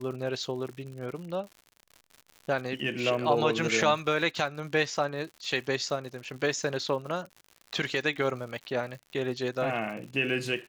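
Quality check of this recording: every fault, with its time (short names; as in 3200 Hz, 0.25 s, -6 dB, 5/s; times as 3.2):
crackle 130/s -39 dBFS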